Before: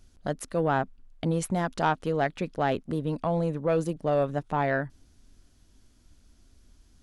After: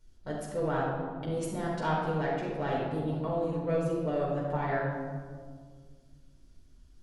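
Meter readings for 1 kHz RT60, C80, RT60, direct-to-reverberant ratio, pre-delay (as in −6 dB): 1.6 s, 2.5 dB, 1.8 s, −6.0 dB, 6 ms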